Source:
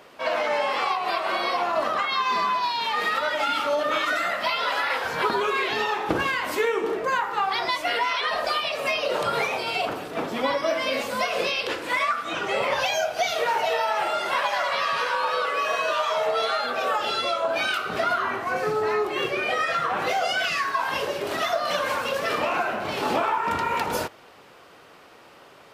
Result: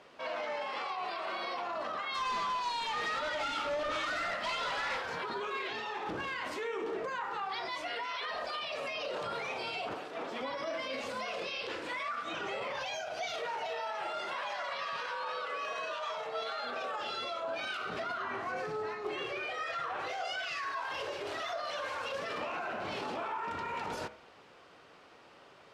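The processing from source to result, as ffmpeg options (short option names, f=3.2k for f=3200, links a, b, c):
-filter_complex "[0:a]asplit=3[a][b][c];[a]afade=t=out:st=2.13:d=0.02[d];[b]volume=24dB,asoftclip=hard,volume=-24dB,afade=t=in:st=2.13:d=0.02,afade=t=out:st=5:d=0.02[e];[c]afade=t=in:st=5:d=0.02[f];[d][e][f]amix=inputs=3:normalize=0,asettb=1/sr,asplit=3[g][h][i];[g]atrim=end=9.944[j];[h]atrim=start=9.94:end=10.41,asetpts=PTS-STARTPTS,afade=t=in:d=0.004:c=qsin,afade=t=out:st=0.466:d=0.004:c=qsin,bass=f=250:g=-13,treble=f=4k:g=-2[k];[i]atrim=start=10.406[l];[j][k]acrossfade=d=0.004:c1=hsin:c2=qsin[m];[m][l]acrossfade=d=0.004:c1=qsin:c2=hsin,asettb=1/sr,asplit=3[n][o][p];[n]atrim=end=19.234[q];[o]atrim=start=19.23:end=22.14,asetpts=PTS-STARTPTS,afade=t=in:d=0.004:c=qsin,afade=t=out:st=2.906:d=0.004:c=qsin,equalizer=f=200:t=o:w=0.77:g=-13[r];[p]atrim=start=22.136[s];[q][r]acrossfade=d=0.004:c1=hsin:c2=qsin[t];[t][s]acrossfade=d=0.004:c1=qsin:c2=hsin,alimiter=limit=-22dB:level=0:latency=1:release=25,lowpass=6.8k,bandreject=f=70.62:t=h:w=4,bandreject=f=141.24:t=h:w=4,bandreject=f=211.86:t=h:w=4,bandreject=f=282.48:t=h:w=4,bandreject=f=353.1:t=h:w=4,bandreject=f=423.72:t=h:w=4,bandreject=f=494.34:t=h:w=4,bandreject=f=564.96:t=h:w=4,bandreject=f=635.58:t=h:w=4,bandreject=f=706.2:t=h:w=4,bandreject=f=776.82:t=h:w=4,bandreject=f=847.44:t=h:w=4,bandreject=f=918.06:t=h:w=4,bandreject=f=988.68:t=h:w=4,bandreject=f=1.0593k:t=h:w=4,bandreject=f=1.12992k:t=h:w=4,bandreject=f=1.20054k:t=h:w=4,bandreject=f=1.27116k:t=h:w=4,bandreject=f=1.34178k:t=h:w=4,bandreject=f=1.4124k:t=h:w=4,bandreject=f=1.48302k:t=h:w=4,bandreject=f=1.55364k:t=h:w=4,bandreject=f=1.62426k:t=h:w=4,bandreject=f=1.69488k:t=h:w=4,bandreject=f=1.7655k:t=h:w=4,bandreject=f=1.83612k:t=h:w=4,bandreject=f=1.90674k:t=h:w=4,bandreject=f=1.97736k:t=h:w=4,bandreject=f=2.04798k:t=h:w=4,bandreject=f=2.1186k:t=h:w=4,bandreject=f=2.18922k:t=h:w=4,bandreject=f=2.25984k:t=h:w=4,bandreject=f=2.33046k:t=h:w=4,bandreject=f=2.40108k:t=h:w=4,bandreject=f=2.4717k:t=h:w=4,bandreject=f=2.54232k:t=h:w=4,bandreject=f=2.61294k:t=h:w=4,volume=-7dB"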